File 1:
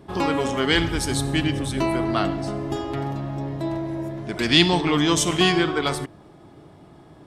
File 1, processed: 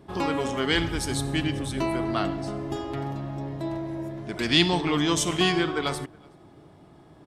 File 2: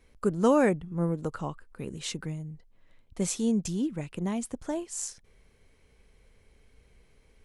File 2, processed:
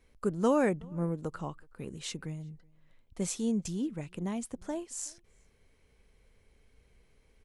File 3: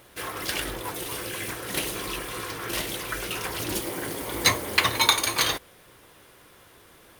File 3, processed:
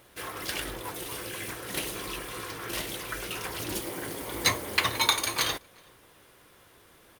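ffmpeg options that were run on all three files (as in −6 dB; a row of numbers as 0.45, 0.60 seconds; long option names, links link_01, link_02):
-filter_complex "[0:a]asplit=2[link_01][link_02];[link_02]adelay=373.2,volume=-28dB,highshelf=frequency=4000:gain=-8.4[link_03];[link_01][link_03]amix=inputs=2:normalize=0,volume=-4dB"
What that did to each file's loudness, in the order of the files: −4.0, −4.0, −4.0 LU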